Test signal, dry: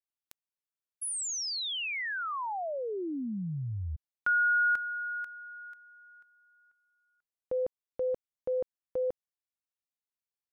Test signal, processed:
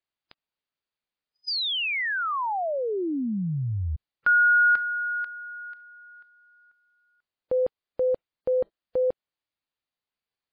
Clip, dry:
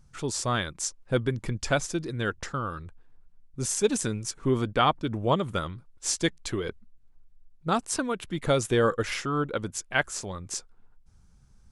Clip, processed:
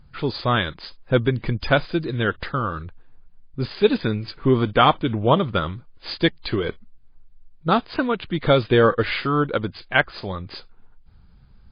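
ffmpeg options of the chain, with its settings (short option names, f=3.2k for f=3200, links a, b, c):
-af "volume=7.5dB" -ar 11025 -c:a libmp3lame -b:a 24k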